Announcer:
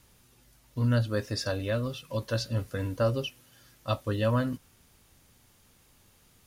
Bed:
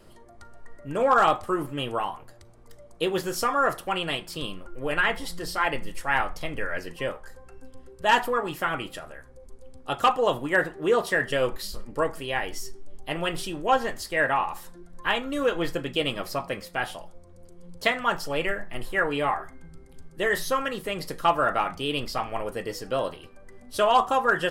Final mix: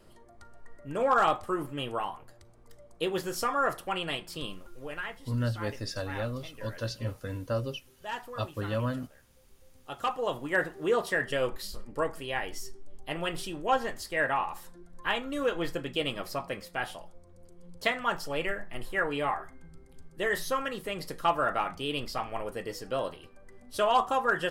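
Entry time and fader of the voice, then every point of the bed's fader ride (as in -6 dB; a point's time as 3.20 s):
4.50 s, -4.5 dB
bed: 4.49 s -4.5 dB
5.18 s -16.5 dB
9.40 s -16.5 dB
10.60 s -4.5 dB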